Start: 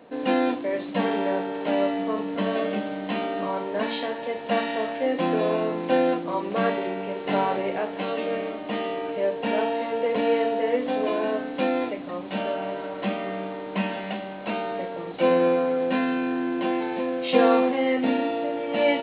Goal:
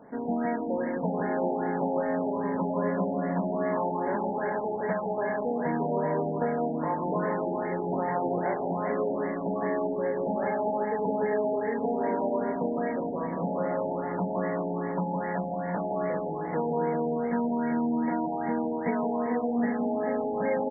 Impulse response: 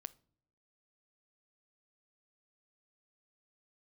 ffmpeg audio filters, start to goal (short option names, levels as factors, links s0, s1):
-af "aecho=1:1:1:0.33,bandreject=f=71.79:t=h:w=4,bandreject=f=143.58:t=h:w=4,bandreject=f=215.37:t=h:w=4,bandreject=f=287.16:t=h:w=4,bandreject=f=358.95:t=h:w=4,bandreject=f=430.74:t=h:w=4,acompressor=threshold=0.0501:ratio=6,aecho=1:1:150|360|654|1066|1642:0.631|0.398|0.251|0.158|0.1,asetrate=40517,aresample=44100,afftfilt=real='re*lt(b*sr/1024,900*pow(2300/900,0.5+0.5*sin(2*PI*2.5*pts/sr)))':imag='im*lt(b*sr/1024,900*pow(2300/900,0.5+0.5*sin(2*PI*2.5*pts/sr)))':win_size=1024:overlap=0.75"